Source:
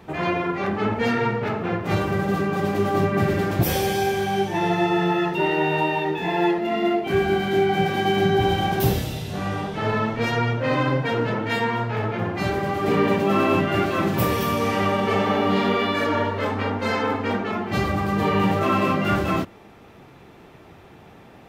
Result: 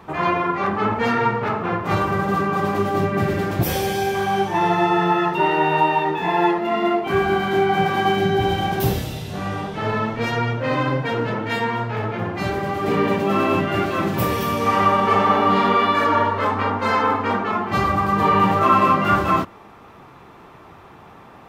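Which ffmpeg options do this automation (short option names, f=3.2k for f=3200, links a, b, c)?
-af "asetnsamples=n=441:p=0,asendcmd='2.82 equalizer g 2;4.15 equalizer g 11;8.15 equalizer g 2;14.66 equalizer g 10.5',equalizer=f=1.1k:t=o:w=0.81:g=9.5"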